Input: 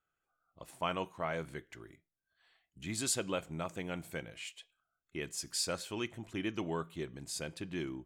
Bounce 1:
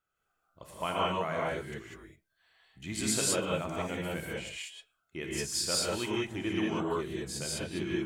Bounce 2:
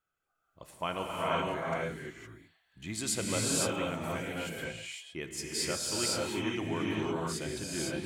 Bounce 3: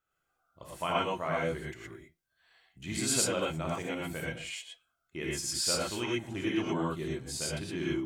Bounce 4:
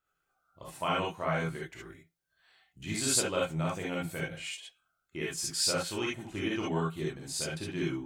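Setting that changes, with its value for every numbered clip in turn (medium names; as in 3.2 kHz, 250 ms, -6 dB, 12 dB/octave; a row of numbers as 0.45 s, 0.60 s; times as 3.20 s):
gated-style reverb, gate: 220 ms, 540 ms, 140 ms, 90 ms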